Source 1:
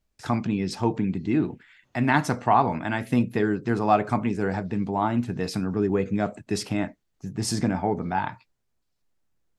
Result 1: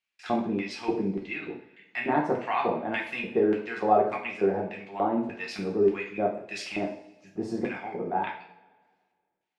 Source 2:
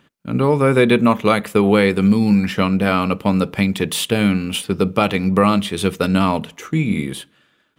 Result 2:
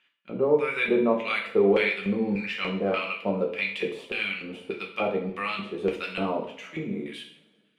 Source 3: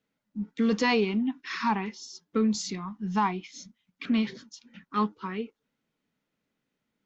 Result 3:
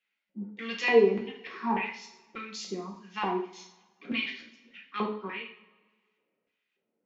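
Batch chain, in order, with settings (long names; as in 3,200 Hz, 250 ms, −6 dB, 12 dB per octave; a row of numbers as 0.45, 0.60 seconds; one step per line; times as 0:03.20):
auto-filter band-pass square 1.7 Hz 490–2,500 Hz
coupled-rooms reverb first 0.49 s, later 1.7 s, from −20 dB, DRR −1 dB
normalise the peak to −9 dBFS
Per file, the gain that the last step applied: +4.0, −4.5, +5.0 decibels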